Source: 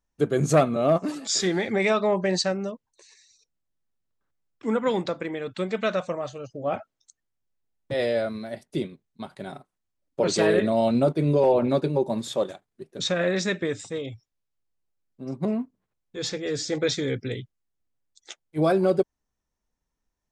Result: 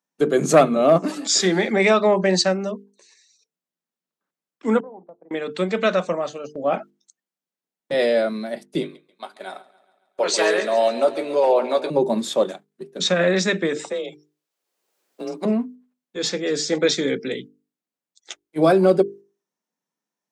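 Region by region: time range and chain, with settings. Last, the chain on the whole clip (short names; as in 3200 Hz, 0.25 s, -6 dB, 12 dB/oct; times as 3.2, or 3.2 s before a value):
4.8–5.31 gate -31 dBFS, range -17 dB + compressor 12:1, threshold -34 dBFS + ladder low-pass 860 Hz, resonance 60%
8.81–11.9 HPF 570 Hz + doubler 16 ms -13 dB + feedback echo 0.138 s, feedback 57%, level -14.5 dB
13.76–15.45 frequency shift +30 Hz + resonant low shelf 290 Hz -9.5 dB, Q 1.5 + three-band squash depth 70%
whole clip: steep high-pass 160 Hz 48 dB/oct; gate -44 dBFS, range -6 dB; notches 50/100/150/200/250/300/350/400/450 Hz; gain +6 dB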